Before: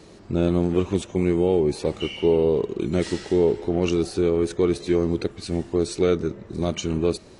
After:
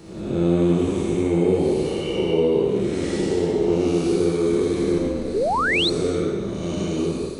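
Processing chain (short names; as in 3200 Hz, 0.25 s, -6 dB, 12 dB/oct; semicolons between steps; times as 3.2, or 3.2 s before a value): time blur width 0.371 s; 4.98–5.72 ring modulator 100 Hz; high shelf 8700 Hz +10.5 dB; reverb, pre-delay 5 ms, DRR -2 dB; 5.34–5.9 painted sound rise 360–4400 Hz -21 dBFS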